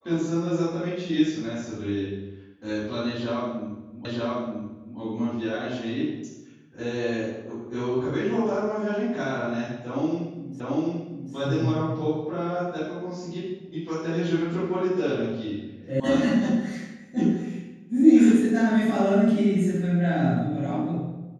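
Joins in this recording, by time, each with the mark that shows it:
4.05 s: repeat of the last 0.93 s
10.60 s: repeat of the last 0.74 s
16.00 s: sound stops dead

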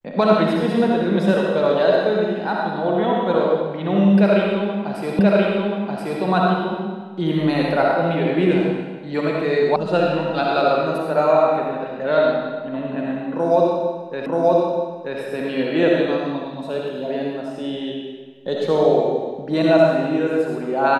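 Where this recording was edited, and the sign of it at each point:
5.19 s: repeat of the last 1.03 s
9.76 s: sound stops dead
14.26 s: repeat of the last 0.93 s

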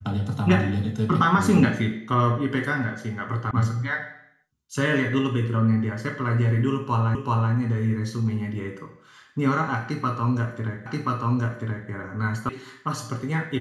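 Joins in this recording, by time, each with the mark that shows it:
3.51 s: sound stops dead
7.15 s: repeat of the last 0.38 s
10.86 s: repeat of the last 1.03 s
12.49 s: sound stops dead

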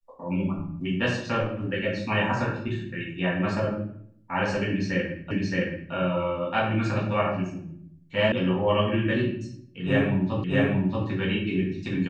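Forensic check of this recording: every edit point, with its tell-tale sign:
5.31 s: repeat of the last 0.62 s
8.32 s: sound stops dead
10.44 s: repeat of the last 0.63 s

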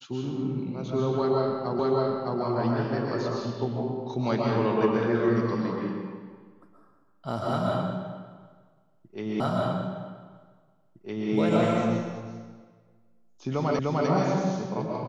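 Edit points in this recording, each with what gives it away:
1.79 s: repeat of the last 0.61 s
9.40 s: repeat of the last 1.91 s
13.79 s: repeat of the last 0.3 s

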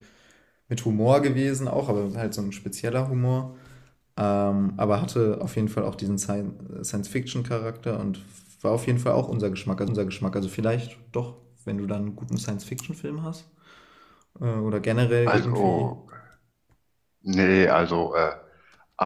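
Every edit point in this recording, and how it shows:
9.88 s: repeat of the last 0.55 s

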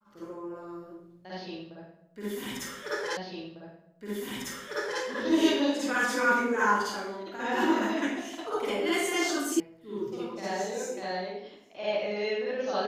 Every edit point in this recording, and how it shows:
3.17 s: repeat of the last 1.85 s
9.60 s: sound stops dead

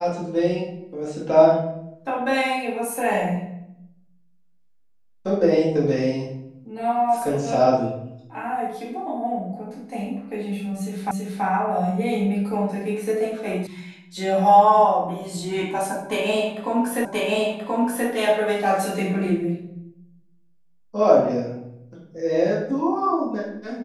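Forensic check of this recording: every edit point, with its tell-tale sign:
11.11 s: repeat of the last 0.33 s
13.67 s: sound stops dead
17.05 s: repeat of the last 1.03 s

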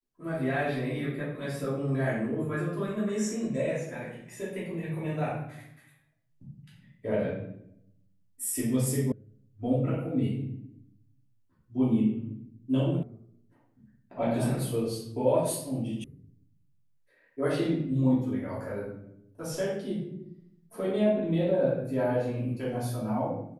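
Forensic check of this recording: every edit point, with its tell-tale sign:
9.12 s: sound stops dead
13.03 s: sound stops dead
16.04 s: sound stops dead

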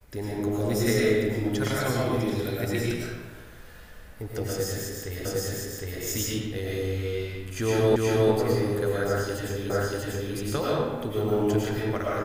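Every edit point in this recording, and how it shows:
5.25 s: repeat of the last 0.76 s
7.96 s: repeat of the last 0.36 s
9.70 s: repeat of the last 0.64 s

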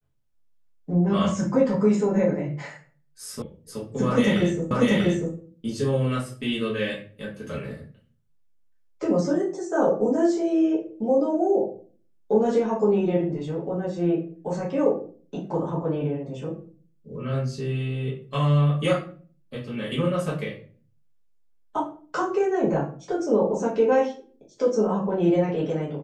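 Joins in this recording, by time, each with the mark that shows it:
3.42 s: sound stops dead
4.71 s: repeat of the last 0.64 s

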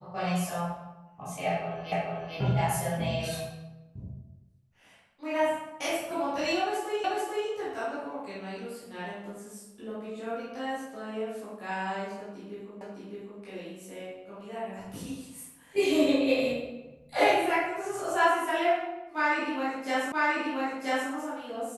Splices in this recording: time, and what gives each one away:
1.92 s: repeat of the last 0.44 s
7.04 s: repeat of the last 0.44 s
12.81 s: repeat of the last 0.61 s
20.12 s: repeat of the last 0.98 s

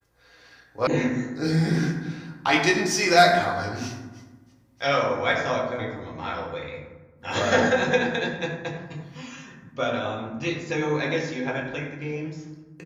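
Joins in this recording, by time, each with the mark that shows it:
0.87 s: sound stops dead

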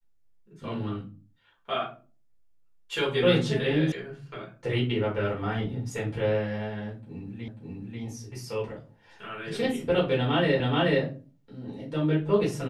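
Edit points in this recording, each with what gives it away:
3.92 s: sound stops dead
7.48 s: repeat of the last 0.54 s
10.60 s: repeat of the last 0.43 s

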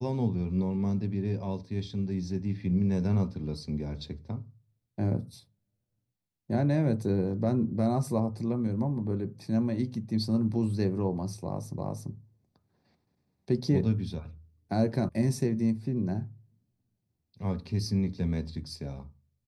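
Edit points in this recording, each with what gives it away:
11.78 s: repeat of the last 0.34 s
15.09 s: sound stops dead

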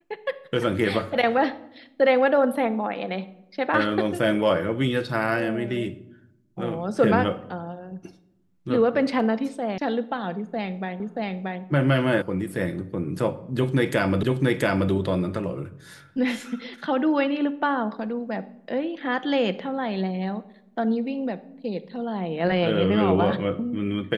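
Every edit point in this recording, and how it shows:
9.78 s: sound stops dead
11.00 s: repeat of the last 0.63 s
12.22 s: sound stops dead
14.23 s: repeat of the last 0.68 s

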